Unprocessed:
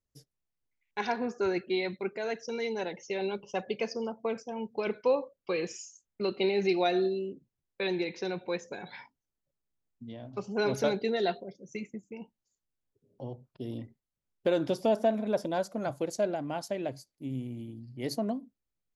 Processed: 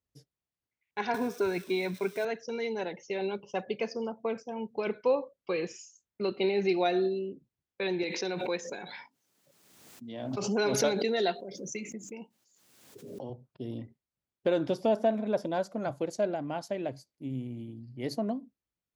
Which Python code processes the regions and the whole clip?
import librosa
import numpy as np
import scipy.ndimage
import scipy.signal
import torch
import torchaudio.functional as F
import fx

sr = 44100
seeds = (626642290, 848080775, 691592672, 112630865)

y = fx.chain(x, sr, fx.crossing_spikes(level_db=-35.5),
    fx.ripple_eq(per_octave=1.6, db=7),
    fx.band_squash(depth_pct=70), at=(1.14, 2.25))
y = fx.chain(y, sr, fx.highpass(hz=180.0, slope=12),
    fx.high_shelf(hz=4300.0, db=10.0),
    fx.pre_swell(db_per_s=35.0), at=(8.03, 13.3))
y = scipy.signal.sosfilt(scipy.signal.butter(2, 49.0, 'highpass', fs=sr, output='sos'), y)
y = fx.high_shelf(y, sr, hz=7000.0, db=-9.5)